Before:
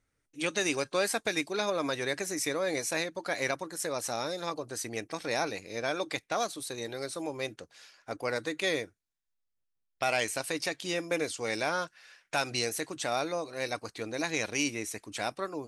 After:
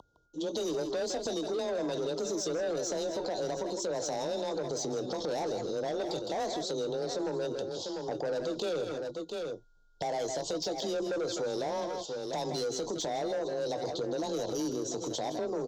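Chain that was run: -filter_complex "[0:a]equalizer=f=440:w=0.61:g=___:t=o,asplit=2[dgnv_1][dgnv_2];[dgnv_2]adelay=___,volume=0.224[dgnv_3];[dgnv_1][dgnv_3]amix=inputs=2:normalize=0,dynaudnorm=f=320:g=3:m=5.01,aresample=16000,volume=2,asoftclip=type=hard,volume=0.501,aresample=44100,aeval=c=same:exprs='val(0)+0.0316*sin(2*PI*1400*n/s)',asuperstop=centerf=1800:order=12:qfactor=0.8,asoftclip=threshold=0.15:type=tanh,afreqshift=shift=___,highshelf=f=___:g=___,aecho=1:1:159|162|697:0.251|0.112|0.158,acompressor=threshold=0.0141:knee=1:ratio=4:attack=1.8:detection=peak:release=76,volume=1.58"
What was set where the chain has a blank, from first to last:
6, 21, 21, 5000, -7.5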